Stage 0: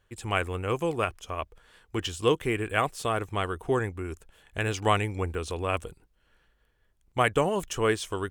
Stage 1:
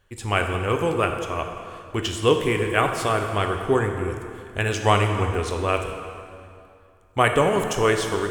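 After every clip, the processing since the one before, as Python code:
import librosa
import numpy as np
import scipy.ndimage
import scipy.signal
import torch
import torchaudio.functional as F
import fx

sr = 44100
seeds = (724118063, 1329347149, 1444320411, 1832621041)

y = fx.rev_plate(x, sr, seeds[0], rt60_s=2.5, hf_ratio=0.75, predelay_ms=0, drr_db=4.0)
y = F.gain(torch.from_numpy(y), 4.5).numpy()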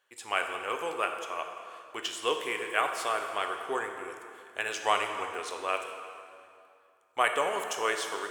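y = scipy.signal.sosfilt(scipy.signal.butter(2, 630.0, 'highpass', fs=sr, output='sos'), x)
y = F.gain(torch.from_numpy(y), -5.5).numpy()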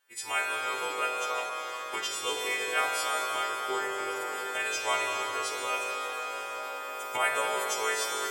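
y = fx.freq_snap(x, sr, grid_st=2)
y = fx.recorder_agc(y, sr, target_db=-20.5, rise_db_per_s=23.0, max_gain_db=30)
y = fx.rev_shimmer(y, sr, seeds[1], rt60_s=3.1, semitones=7, shimmer_db=-8, drr_db=2.0)
y = F.gain(torch.from_numpy(y), -5.0).numpy()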